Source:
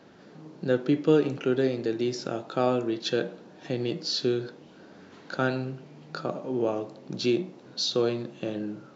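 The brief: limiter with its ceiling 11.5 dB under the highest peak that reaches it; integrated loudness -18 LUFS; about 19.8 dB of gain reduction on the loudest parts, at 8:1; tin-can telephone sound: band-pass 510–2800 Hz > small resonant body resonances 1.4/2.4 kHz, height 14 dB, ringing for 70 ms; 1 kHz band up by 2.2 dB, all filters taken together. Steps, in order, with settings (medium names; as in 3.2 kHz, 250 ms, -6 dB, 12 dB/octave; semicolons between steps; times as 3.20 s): peaking EQ 1 kHz +4 dB; compression 8:1, threshold -36 dBFS; peak limiter -30.5 dBFS; band-pass 510–2800 Hz; small resonant body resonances 1.4/2.4 kHz, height 14 dB, ringing for 70 ms; trim +28.5 dB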